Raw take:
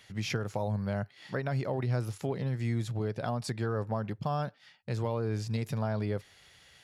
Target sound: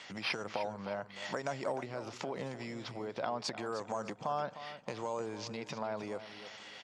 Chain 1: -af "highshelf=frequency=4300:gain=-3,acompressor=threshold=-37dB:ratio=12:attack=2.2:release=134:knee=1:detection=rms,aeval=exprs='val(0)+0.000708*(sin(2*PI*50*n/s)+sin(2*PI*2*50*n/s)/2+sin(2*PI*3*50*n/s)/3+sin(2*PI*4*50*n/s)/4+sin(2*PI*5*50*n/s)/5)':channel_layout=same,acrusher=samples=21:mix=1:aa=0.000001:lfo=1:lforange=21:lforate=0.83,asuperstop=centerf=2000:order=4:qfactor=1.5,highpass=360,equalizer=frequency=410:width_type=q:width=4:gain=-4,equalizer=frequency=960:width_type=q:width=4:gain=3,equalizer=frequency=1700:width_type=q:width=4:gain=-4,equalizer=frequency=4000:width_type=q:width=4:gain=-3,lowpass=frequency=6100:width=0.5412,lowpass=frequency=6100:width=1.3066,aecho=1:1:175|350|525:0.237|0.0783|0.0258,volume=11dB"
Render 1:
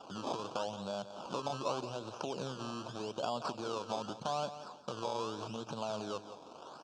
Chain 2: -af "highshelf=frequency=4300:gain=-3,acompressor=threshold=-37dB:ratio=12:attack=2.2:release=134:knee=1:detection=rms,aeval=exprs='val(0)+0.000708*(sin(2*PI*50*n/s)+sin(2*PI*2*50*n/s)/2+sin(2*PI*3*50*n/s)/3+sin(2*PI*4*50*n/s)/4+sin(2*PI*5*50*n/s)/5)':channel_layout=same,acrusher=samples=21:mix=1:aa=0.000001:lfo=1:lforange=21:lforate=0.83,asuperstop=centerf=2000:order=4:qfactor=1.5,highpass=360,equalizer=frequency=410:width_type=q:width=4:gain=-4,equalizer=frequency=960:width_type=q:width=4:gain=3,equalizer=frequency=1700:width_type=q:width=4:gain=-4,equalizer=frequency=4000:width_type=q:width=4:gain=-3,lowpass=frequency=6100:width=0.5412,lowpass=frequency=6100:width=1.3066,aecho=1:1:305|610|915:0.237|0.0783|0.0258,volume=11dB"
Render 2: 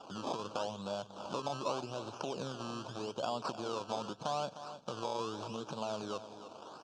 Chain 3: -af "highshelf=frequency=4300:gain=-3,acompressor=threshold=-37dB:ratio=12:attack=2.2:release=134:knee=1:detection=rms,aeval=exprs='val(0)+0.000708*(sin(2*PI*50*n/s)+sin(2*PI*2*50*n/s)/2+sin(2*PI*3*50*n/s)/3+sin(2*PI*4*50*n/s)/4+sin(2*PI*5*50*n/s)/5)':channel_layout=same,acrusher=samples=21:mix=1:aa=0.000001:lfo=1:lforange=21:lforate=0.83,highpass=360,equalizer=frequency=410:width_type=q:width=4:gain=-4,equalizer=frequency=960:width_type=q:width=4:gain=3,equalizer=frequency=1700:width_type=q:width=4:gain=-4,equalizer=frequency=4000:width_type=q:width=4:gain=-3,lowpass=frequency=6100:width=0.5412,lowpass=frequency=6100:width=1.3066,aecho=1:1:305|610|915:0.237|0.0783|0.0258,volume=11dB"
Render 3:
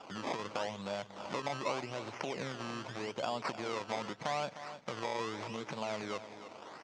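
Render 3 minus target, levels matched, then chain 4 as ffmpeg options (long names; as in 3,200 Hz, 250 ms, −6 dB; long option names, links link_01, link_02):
sample-and-hold swept by an LFO: distortion +9 dB
-af "highshelf=frequency=4300:gain=-3,acompressor=threshold=-37dB:ratio=12:attack=2.2:release=134:knee=1:detection=rms,aeval=exprs='val(0)+0.000708*(sin(2*PI*50*n/s)+sin(2*PI*2*50*n/s)/2+sin(2*PI*3*50*n/s)/3+sin(2*PI*4*50*n/s)/4+sin(2*PI*5*50*n/s)/5)':channel_layout=same,acrusher=samples=4:mix=1:aa=0.000001:lfo=1:lforange=4:lforate=0.83,highpass=360,equalizer=frequency=410:width_type=q:width=4:gain=-4,equalizer=frequency=960:width_type=q:width=4:gain=3,equalizer=frequency=1700:width_type=q:width=4:gain=-4,equalizer=frequency=4000:width_type=q:width=4:gain=-3,lowpass=frequency=6100:width=0.5412,lowpass=frequency=6100:width=1.3066,aecho=1:1:305|610|915:0.237|0.0783|0.0258,volume=11dB"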